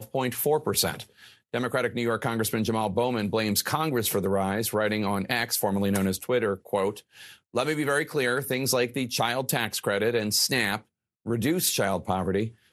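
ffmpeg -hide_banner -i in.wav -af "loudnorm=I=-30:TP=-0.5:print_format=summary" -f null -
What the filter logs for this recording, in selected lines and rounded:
Input Integrated:    -26.2 LUFS
Input True Peak:      -8.3 dBTP
Input LRA:             1.4 LU
Input Threshold:     -36.5 LUFS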